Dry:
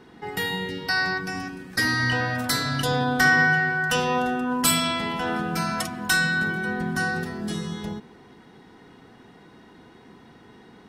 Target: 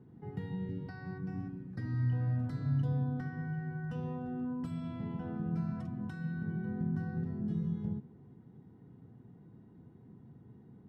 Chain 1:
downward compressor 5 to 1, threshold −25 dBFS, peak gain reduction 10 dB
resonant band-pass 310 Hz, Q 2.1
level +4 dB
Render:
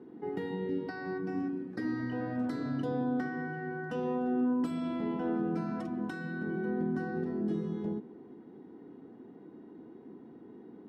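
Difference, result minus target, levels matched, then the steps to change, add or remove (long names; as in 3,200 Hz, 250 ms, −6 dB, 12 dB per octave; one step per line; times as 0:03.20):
125 Hz band −10.5 dB
change: resonant band-pass 120 Hz, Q 2.1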